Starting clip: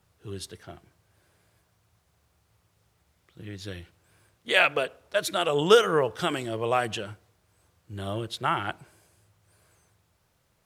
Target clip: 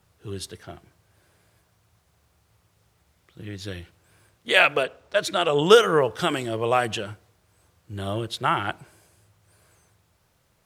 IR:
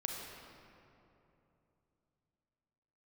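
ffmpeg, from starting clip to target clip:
-filter_complex "[0:a]asettb=1/sr,asplit=3[a][b][c];[a]atrim=end=4.834[d];[b]atrim=start=4.83:end=5.64,asetpts=PTS-STARTPTS,afade=t=in:d=0.004:c=qsin,afade=t=out:st=0.806:d=0.004:c=qsin,equalizer=f=12k:w=1.1:g=-10[e];[c]atrim=start=5.636[f];[d][e]acrossfade=d=0.004:c1=hsin:c2=qsin[g];[g][f]acrossfade=d=0.004:c1=qsin:c2=hsin,volume=3.5dB"

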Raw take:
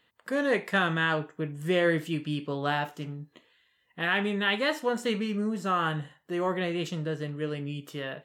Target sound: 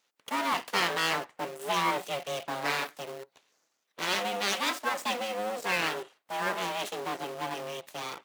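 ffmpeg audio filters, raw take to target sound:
-filter_complex "[0:a]asuperstop=centerf=1900:order=8:qfactor=4.5,afreqshift=53,asplit=2[a][b];[b]acrusher=bits=5:mix=0:aa=0.000001,volume=-7dB[c];[a][c]amix=inputs=2:normalize=0,aeval=exprs='abs(val(0))':c=same,highpass=320,aeval=exprs='0.224*(cos(1*acos(clip(val(0)/0.224,-1,1)))-cos(1*PI/2))+0.00447*(cos(2*acos(clip(val(0)/0.224,-1,1)))-cos(2*PI/2))':c=same"

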